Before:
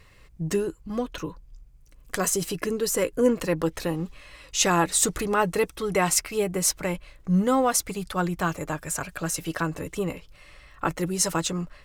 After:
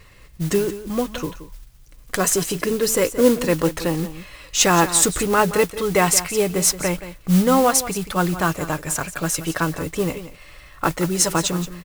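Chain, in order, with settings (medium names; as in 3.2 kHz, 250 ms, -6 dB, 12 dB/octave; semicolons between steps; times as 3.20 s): modulation noise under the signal 16 dB; delay 175 ms -13.5 dB; trim +5.5 dB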